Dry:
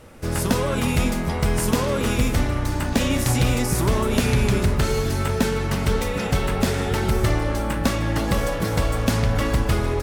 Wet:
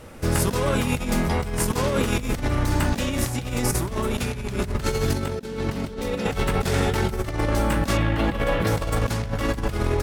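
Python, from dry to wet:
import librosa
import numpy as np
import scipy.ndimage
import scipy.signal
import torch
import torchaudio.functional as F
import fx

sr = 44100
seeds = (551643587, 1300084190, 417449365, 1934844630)

y = fx.graphic_eq_10(x, sr, hz=(250, 500, 4000), db=(8, 5, 4), at=(5.14, 6.26))
y = fx.over_compress(y, sr, threshold_db=-23.0, ratio=-0.5)
y = fx.high_shelf_res(y, sr, hz=4200.0, db=-9.5, q=1.5, at=(7.97, 8.67))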